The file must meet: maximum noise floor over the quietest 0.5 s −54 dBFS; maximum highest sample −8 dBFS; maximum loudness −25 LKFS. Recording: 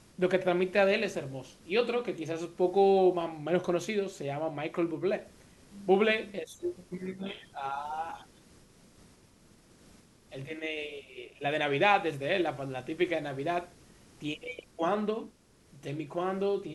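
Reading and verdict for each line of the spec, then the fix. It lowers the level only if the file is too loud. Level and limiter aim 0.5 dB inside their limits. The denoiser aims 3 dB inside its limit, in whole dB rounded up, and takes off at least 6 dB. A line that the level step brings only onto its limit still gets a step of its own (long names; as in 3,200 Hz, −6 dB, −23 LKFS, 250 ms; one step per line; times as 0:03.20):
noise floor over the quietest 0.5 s −60 dBFS: in spec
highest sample −10.0 dBFS: in spec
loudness −31.0 LKFS: in spec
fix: no processing needed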